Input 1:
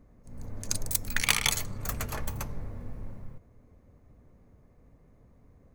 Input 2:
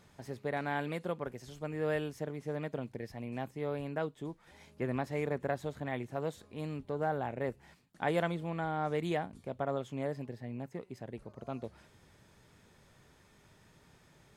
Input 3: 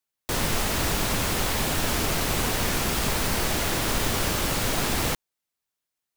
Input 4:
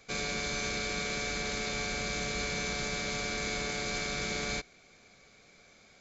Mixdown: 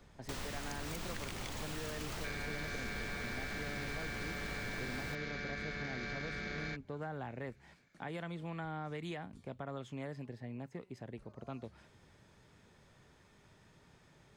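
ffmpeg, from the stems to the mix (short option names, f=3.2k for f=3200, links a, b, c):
-filter_complex "[0:a]acompressor=threshold=-31dB:ratio=6,volume=-5.5dB[a];[1:a]alimiter=level_in=1.5dB:limit=-24dB:level=0:latency=1:release=136,volume=-1.5dB,volume=-1dB[b];[2:a]volume=-11.5dB[c];[3:a]afwtdn=0.00631,equalizer=f=1.7k:w=2.4:g=14,adelay=2150,volume=-2.5dB[d];[a][b][c][d]amix=inputs=4:normalize=0,equalizer=f=13k:w=0.88:g=-9.5,acrossover=split=340|940[e][f][g];[e]acompressor=threshold=-42dB:ratio=4[h];[f]acompressor=threshold=-51dB:ratio=4[i];[g]acompressor=threshold=-44dB:ratio=4[j];[h][i][j]amix=inputs=3:normalize=0"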